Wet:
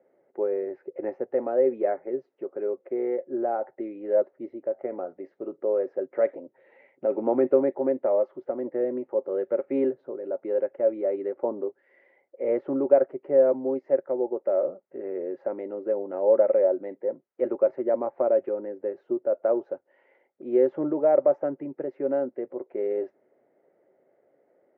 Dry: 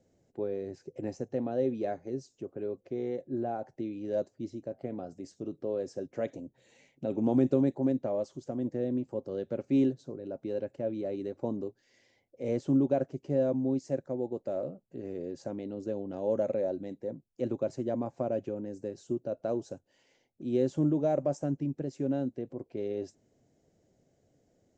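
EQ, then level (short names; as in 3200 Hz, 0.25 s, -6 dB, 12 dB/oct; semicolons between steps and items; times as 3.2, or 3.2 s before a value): speaker cabinet 360–2100 Hz, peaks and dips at 380 Hz +8 dB, 560 Hz +9 dB, 880 Hz +7 dB, 1300 Hz +8 dB, 2000 Hz +8 dB; +2.0 dB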